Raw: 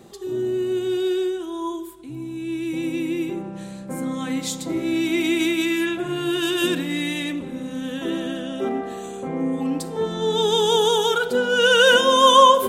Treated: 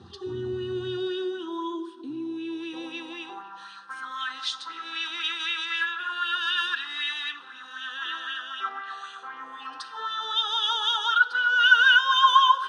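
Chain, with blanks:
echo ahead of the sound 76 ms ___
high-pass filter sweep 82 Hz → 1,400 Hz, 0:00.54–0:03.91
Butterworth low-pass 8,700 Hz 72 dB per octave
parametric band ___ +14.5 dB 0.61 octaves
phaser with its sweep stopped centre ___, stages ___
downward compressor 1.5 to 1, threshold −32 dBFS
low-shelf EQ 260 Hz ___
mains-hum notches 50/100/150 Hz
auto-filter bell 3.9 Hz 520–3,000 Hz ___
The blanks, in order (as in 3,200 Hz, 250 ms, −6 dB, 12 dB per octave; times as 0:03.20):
−24 dB, 87 Hz, 2,200 Hz, 6, −5.5 dB, +9 dB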